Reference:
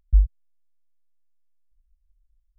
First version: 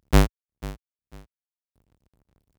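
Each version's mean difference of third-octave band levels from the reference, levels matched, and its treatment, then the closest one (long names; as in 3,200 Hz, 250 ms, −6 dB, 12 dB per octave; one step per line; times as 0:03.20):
16.0 dB: each half-wave held at its own peak
high-pass filter 60 Hz 12 dB per octave
on a send: repeating echo 495 ms, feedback 27%, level −18 dB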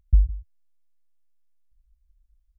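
3.0 dB: parametric band 81 Hz +9.5 dB 1.5 octaves
downward compressor 2.5 to 1, threshold −15 dBFS, peak gain reduction 6.5 dB
single-tap delay 159 ms −16.5 dB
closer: second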